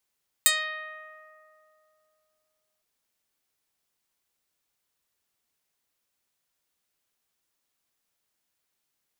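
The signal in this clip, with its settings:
Karplus-Strong string D#5, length 2.36 s, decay 3.05 s, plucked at 0.11, medium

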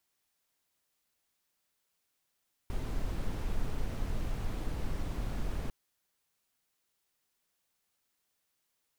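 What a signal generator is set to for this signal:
noise brown, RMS −32.5 dBFS 3.00 s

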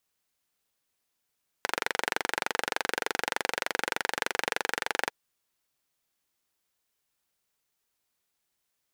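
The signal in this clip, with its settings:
pulse-train model of a single-cylinder engine, steady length 3.45 s, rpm 2,800, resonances 500/840/1,500 Hz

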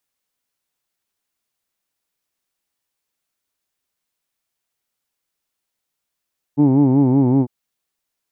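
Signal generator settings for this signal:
vowel by formant synthesis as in who'd, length 0.90 s, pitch 140 Hz, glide −1.5 semitones, vibrato depth 1.1 semitones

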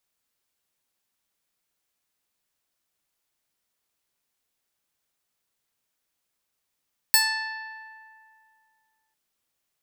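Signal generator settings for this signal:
Karplus-Strong string A5, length 2.00 s, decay 2.41 s, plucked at 0.26, bright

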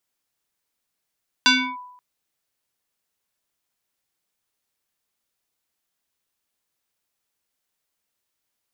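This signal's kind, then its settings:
two-operator FM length 0.53 s, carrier 993 Hz, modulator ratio 1.26, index 3.5, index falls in 0.31 s linear, decay 0.81 s, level −10 dB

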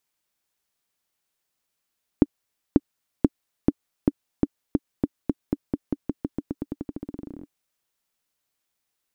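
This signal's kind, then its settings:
bouncing ball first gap 0.54 s, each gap 0.9, 287 Hz, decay 38 ms −2.5 dBFS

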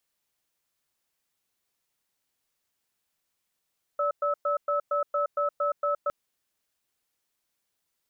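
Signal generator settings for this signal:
tone pair in a cadence 581 Hz, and 1,300 Hz, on 0.12 s, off 0.11 s, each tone −26 dBFS 2.11 s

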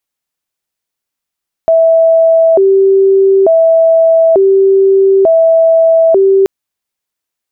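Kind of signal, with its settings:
siren hi-lo 388–655 Hz 0.56 per second sine −4 dBFS 4.78 s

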